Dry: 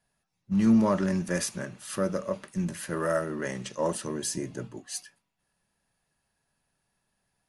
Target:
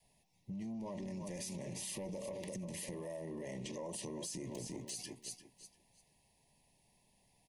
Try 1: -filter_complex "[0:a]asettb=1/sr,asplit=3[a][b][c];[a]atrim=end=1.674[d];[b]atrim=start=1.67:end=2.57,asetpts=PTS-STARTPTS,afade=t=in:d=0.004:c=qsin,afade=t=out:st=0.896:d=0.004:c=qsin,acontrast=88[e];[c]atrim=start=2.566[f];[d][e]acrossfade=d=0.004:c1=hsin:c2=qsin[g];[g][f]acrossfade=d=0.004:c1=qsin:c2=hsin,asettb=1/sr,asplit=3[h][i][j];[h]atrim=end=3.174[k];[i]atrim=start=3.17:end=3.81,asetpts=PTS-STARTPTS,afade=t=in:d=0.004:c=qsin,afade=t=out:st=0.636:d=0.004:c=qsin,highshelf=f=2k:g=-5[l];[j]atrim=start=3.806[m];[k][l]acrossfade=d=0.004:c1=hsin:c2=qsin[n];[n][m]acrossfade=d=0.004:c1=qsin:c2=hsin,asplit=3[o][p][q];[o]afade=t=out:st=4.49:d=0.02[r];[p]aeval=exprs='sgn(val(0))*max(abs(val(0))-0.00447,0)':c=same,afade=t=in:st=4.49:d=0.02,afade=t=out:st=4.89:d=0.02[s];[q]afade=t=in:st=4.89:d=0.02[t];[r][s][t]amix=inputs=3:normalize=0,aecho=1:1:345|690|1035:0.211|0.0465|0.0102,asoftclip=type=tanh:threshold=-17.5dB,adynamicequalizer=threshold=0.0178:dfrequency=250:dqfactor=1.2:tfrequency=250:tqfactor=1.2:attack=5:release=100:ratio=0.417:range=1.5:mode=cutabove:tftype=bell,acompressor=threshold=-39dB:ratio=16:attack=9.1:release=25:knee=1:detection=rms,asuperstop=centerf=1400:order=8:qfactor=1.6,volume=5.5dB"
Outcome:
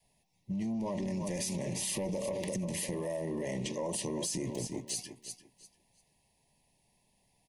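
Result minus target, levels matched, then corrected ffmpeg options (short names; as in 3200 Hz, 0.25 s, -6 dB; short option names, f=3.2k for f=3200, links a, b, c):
compressor: peak gain reduction -8.5 dB
-filter_complex "[0:a]asettb=1/sr,asplit=3[a][b][c];[a]atrim=end=1.674[d];[b]atrim=start=1.67:end=2.57,asetpts=PTS-STARTPTS,afade=t=in:d=0.004:c=qsin,afade=t=out:st=0.896:d=0.004:c=qsin,acontrast=88[e];[c]atrim=start=2.566[f];[d][e]acrossfade=d=0.004:c1=hsin:c2=qsin[g];[g][f]acrossfade=d=0.004:c1=qsin:c2=hsin,asettb=1/sr,asplit=3[h][i][j];[h]atrim=end=3.174[k];[i]atrim=start=3.17:end=3.81,asetpts=PTS-STARTPTS,afade=t=in:d=0.004:c=qsin,afade=t=out:st=0.636:d=0.004:c=qsin,highshelf=f=2k:g=-5[l];[j]atrim=start=3.806[m];[k][l]acrossfade=d=0.004:c1=hsin:c2=qsin[n];[n][m]acrossfade=d=0.004:c1=qsin:c2=hsin,asplit=3[o][p][q];[o]afade=t=out:st=4.49:d=0.02[r];[p]aeval=exprs='sgn(val(0))*max(abs(val(0))-0.00447,0)':c=same,afade=t=in:st=4.49:d=0.02,afade=t=out:st=4.89:d=0.02[s];[q]afade=t=in:st=4.89:d=0.02[t];[r][s][t]amix=inputs=3:normalize=0,aecho=1:1:345|690|1035:0.211|0.0465|0.0102,asoftclip=type=tanh:threshold=-17.5dB,adynamicequalizer=threshold=0.0178:dfrequency=250:dqfactor=1.2:tfrequency=250:tqfactor=1.2:attack=5:release=100:ratio=0.417:range=1.5:mode=cutabove:tftype=bell,acompressor=threshold=-48dB:ratio=16:attack=9.1:release=25:knee=1:detection=rms,asuperstop=centerf=1400:order=8:qfactor=1.6,volume=5.5dB"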